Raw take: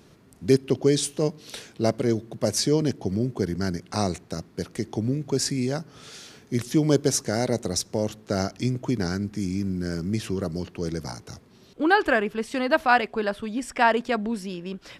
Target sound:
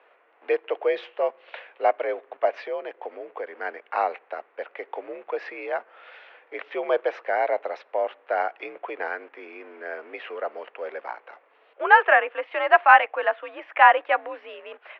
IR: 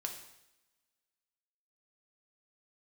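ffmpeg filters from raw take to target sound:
-filter_complex "[0:a]asplit=2[link_01][link_02];[link_02]aeval=exprs='val(0)*gte(abs(val(0)),0.0158)':channel_layout=same,volume=-10.5dB[link_03];[link_01][link_03]amix=inputs=2:normalize=0,asplit=3[link_04][link_05][link_06];[link_04]afade=type=out:start_time=2.61:duration=0.02[link_07];[link_05]acompressor=threshold=-21dB:ratio=6,afade=type=in:start_time=2.61:duration=0.02,afade=type=out:start_time=3.64:duration=0.02[link_08];[link_06]afade=type=in:start_time=3.64:duration=0.02[link_09];[link_07][link_08][link_09]amix=inputs=3:normalize=0,highpass=frequency=510:width_type=q:width=0.5412,highpass=frequency=510:width_type=q:width=1.307,lowpass=frequency=2600:width_type=q:width=0.5176,lowpass=frequency=2600:width_type=q:width=0.7071,lowpass=frequency=2600:width_type=q:width=1.932,afreqshift=62,volume=3.5dB"

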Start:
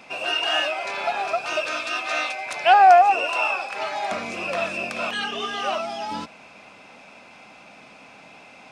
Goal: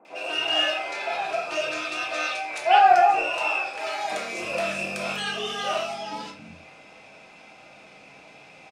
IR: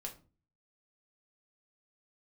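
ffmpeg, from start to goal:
-filter_complex "[0:a]asettb=1/sr,asplit=3[link_01][link_02][link_03];[link_01]atrim=end=3.744[link_04];[link_02]atrim=start=3.74:end=5.89,asetpts=PTS-STARTPTS,afade=type=in:duration=0.004:curve=qsin,afade=type=out:start_time=2.146:duration=0.004:curve=qsin,highshelf=frequency=7500:gain=11[link_05];[link_03]atrim=start=5.886[link_06];[link_04][link_05]acrossfade=duration=0.004:curve1=hsin:curve2=qsin[link_07];[link_07][link_06]acrossfade=duration=0.004:curve1=qsin:curve2=hsin,acrossover=split=220|1100[link_08][link_09][link_10];[link_10]adelay=50[link_11];[link_08]adelay=270[link_12];[link_12][link_09][link_11]amix=inputs=3:normalize=0[link_13];[1:a]atrim=start_sample=2205,afade=type=out:start_time=0.17:duration=0.01,atrim=end_sample=7938,asetrate=33075,aresample=44100[link_14];[link_13][link_14]afir=irnorm=-1:irlink=0"

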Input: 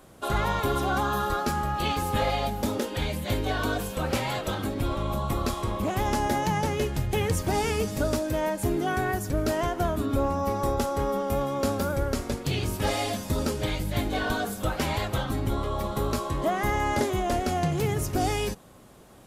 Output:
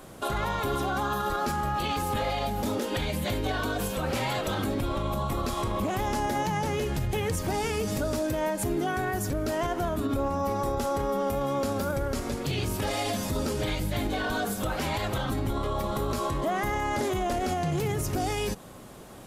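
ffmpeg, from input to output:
ffmpeg -i in.wav -af "alimiter=level_in=2dB:limit=-24dB:level=0:latency=1:release=102,volume=-2dB,equalizer=frequency=68:width=1.5:gain=-2.5,volume=6dB" out.wav

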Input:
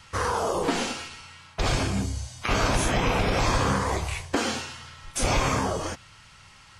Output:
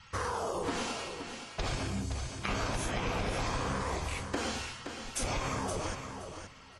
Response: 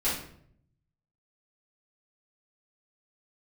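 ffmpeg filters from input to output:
-af "acompressor=threshold=-28dB:ratio=3,afftfilt=real='re*gte(hypot(re,im),0.002)':imag='im*gte(hypot(re,im),0.002)':win_size=1024:overlap=0.75,aecho=1:1:521|1042|1563:0.398|0.0717|0.0129,volume=-4dB"

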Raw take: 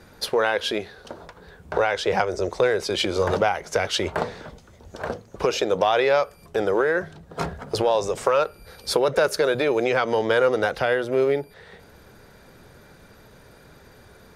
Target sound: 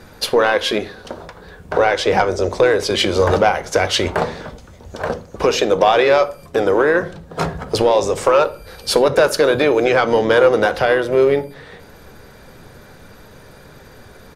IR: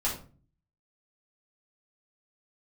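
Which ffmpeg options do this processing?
-filter_complex "[0:a]asplit=2[link_01][link_02];[link_02]asetrate=29433,aresample=44100,atempo=1.49831,volume=-14dB[link_03];[link_01][link_03]amix=inputs=2:normalize=0,acontrast=74,asplit=2[link_04][link_05];[1:a]atrim=start_sample=2205[link_06];[link_05][link_06]afir=irnorm=-1:irlink=0,volume=-16.5dB[link_07];[link_04][link_07]amix=inputs=2:normalize=0,volume=-1dB"

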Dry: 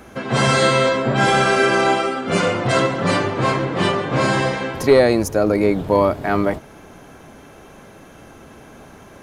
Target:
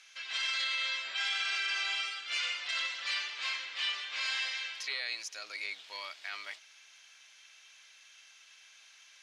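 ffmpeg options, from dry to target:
ffmpeg -i in.wav -filter_complex "[0:a]asuperpass=centerf=3600:order=4:qfactor=1,acrossover=split=3700[link_01][link_02];[link_02]acompressor=threshold=-41dB:ratio=4:attack=1:release=60[link_03];[link_01][link_03]amix=inputs=2:normalize=0,alimiter=limit=-21.5dB:level=0:latency=1:release=23,highshelf=frequency=3000:gain=11,volume=-7.5dB" out.wav

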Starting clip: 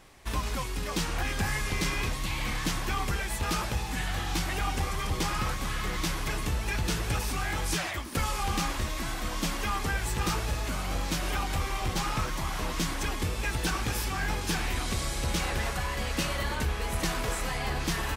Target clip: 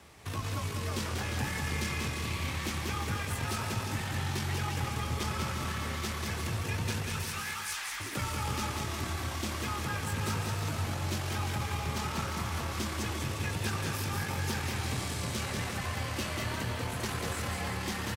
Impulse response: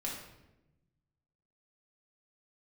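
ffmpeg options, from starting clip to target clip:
-filter_complex "[0:a]asettb=1/sr,asplit=3[link_01][link_02][link_03];[link_01]atrim=end=7.034[link_04];[link_02]atrim=start=7.03:end=8,asetpts=PTS-STARTPTS,afade=type=in:duration=0.004:curve=qsin,afade=type=out:start_time=0.966:duration=0.004:curve=qsin,highpass=frequency=960:width=0.5412,highpass=frequency=960:width=1.3066[link_05];[link_03]atrim=start=7.996[link_06];[link_04][link_05]acrossfade=duration=0.004:curve1=hsin:curve2=qsin[link_07];[link_07][link_06]acrossfade=duration=0.004:curve1=qsin:curve2=hsin,alimiter=level_in=4dB:limit=-24dB:level=0:latency=1:release=357,volume=-4dB,aeval=exprs='0.15*(cos(1*acos(clip(val(0)/0.15,-1,1)))-cos(1*PI/2))+0.0237*(cos(4*acos(clip(val(0)/0.15,-1,1)))-cos(4*PI/2))':channel_layout=same,afreqshift=44,aecho=1:1:190|351.5|488.8|605.5|704.6:0.631|0.398|0.251|0.158|0.1"

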